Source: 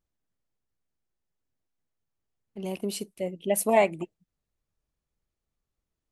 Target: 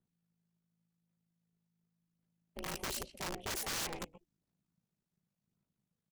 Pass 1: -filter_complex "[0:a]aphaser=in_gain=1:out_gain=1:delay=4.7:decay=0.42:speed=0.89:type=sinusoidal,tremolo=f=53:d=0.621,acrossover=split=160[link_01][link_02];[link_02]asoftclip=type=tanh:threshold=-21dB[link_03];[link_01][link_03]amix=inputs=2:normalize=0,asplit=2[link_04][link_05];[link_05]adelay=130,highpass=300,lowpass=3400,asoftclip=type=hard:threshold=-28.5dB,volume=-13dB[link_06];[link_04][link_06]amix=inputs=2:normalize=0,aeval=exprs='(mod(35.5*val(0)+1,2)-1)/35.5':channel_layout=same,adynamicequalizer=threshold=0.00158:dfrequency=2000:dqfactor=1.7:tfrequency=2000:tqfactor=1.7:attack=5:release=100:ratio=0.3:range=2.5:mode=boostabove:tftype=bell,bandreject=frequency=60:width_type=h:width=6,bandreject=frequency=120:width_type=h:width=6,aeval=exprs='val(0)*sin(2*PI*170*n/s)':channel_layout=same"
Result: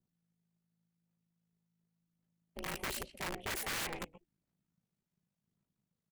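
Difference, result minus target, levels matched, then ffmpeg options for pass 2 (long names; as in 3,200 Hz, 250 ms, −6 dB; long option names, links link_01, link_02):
2,000 Hz band +3.5 dB
-filter_complex "[0:a]aphaser=in_gain=1:out_gain=1:delay=4.7:decay=0.42:speed=0.89:type=sinusoidal,tremolo=f=53:d=0.621,acrossover=split=160[link_01][link_02];[link_02]asoftclip=type=tanh:threshold=-21dB[link_03];[link_01][link_03]amix=inputs=2:normalize=0,asplit=2[link_04][link_05];[link_05]adelay=130,highpass=300,lowpass=3400,asoftclip=type=hard:threshold=-28.5dB,volume=-13dB[link_06];[link_04][link_06]amix=inputs=2:normalize=0,aeval=exprs='(mod(35.5*val(0)+1,2)-1)/35.5':channel_layout=same,adynamicequalizer=threshold=0.00158:dfrequency=5800:dqfactor=1.7:tfrequency=5800:tqfactor=1.7:attack=5:release=100:ratio=0.3:range=2.5:mode=boostabove:tftype=bell,bandreject=frequency=60:width_type=h:width=6,bandreject=frequency=120:width_type=h:width=6,aeval=exprs='val(0)*sin(2*PI*170*n/s)':channel_layout=same"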